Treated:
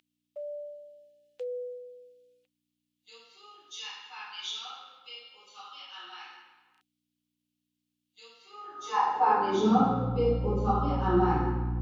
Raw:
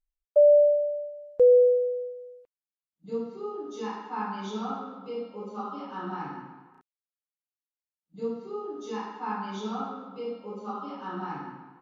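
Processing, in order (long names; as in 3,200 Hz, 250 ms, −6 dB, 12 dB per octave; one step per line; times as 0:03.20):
hollow resonant body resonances 360/510/760 Hz, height 12 dB, ringing for 85 ms
mains hum 60 Hz, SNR 14 dB
high-pass filter sweep 3,000 Hz → 77 Hz, 0:08.42–0:10.26
level +4.5 dB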